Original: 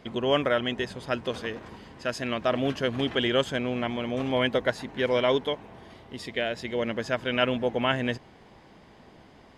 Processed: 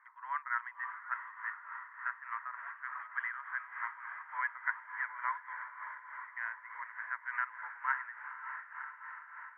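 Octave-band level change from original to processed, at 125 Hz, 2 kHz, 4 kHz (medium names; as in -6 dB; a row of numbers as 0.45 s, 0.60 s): under -40 dB, -4.0 dB, under -40 dB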